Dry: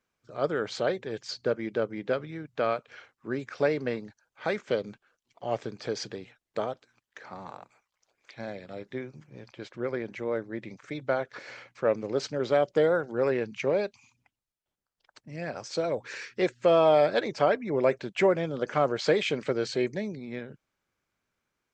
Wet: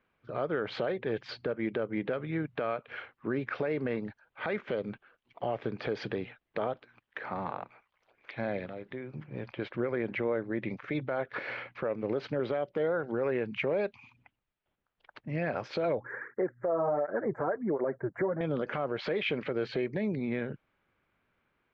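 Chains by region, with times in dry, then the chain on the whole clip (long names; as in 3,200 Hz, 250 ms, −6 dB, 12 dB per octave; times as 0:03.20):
0:08.67–0:09.13: downward compressor 2.5 to 1, threshold −48 dBFS + log-companded quantiser 8 bits
0:16.00–0:18.41: inverse Chebyshev band-stop filter 2,500–5,500 Hz + through-zero flanger with one copy inverted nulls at 1.4 Hz, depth 5.6 ms
whole clip: low-pass filter 3,100 Hz 24 dB per octave; downward compressor 6 to 1, threshold −32 dBFS; brickwall limiter −28.5 dBFS; level +7 dB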